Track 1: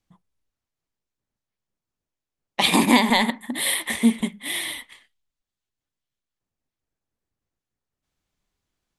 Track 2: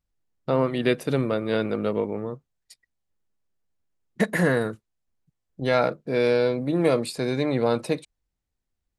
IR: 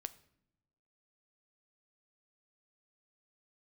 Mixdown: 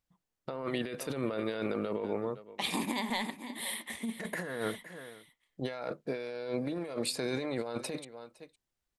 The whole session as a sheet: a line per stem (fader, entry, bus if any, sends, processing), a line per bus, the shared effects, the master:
-18.5 dB, 0.00 s, no send, echo send -14.5 dB, dry
-4.0 dB, 0.00 s, no send, echo send -23 dB, low shelf 240 Hz -11 dB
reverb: off
echo: echo 0.51 s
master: negative-ratio compressor -35 dBFS, ratio -1

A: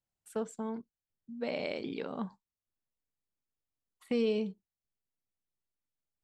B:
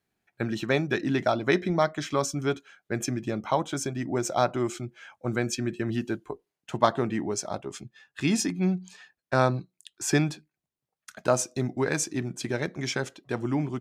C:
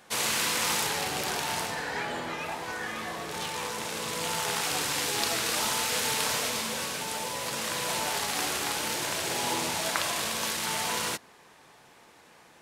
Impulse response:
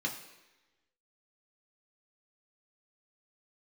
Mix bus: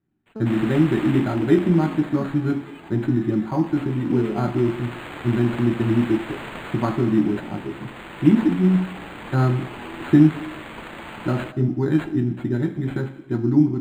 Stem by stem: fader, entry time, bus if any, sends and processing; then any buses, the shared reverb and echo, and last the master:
-3.0 dB, 0.00 s, no send, dry
-3.0 dB, 0.00 s, send -4.5 dB, dry
-9.5 dB, 0.35 s, no send, high shelf 4400 Hz +10 dB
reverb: on, RT60 1.1 s, pre-delay 3 ms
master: resonant low shelf 410 Hz +6 dB, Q 3; decimation joined by straight lines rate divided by 8×

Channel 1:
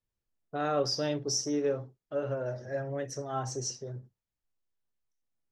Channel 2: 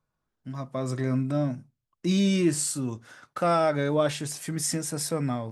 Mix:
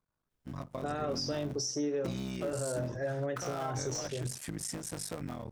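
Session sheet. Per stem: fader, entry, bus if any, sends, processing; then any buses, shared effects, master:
+2.5 dB, 0.30 s, no send, compressor, threshold -31 dBFS, peak gain reduction 7.5 dB
-3.0 dB, 0.00 s, no send, cycle switcher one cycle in 3, muted; compressor 6:1, threshold -32 dBFS, peak gain reduction 12.5 dB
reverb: off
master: limiter -25.5 dBFS, peak gain reduction 6.5 dB

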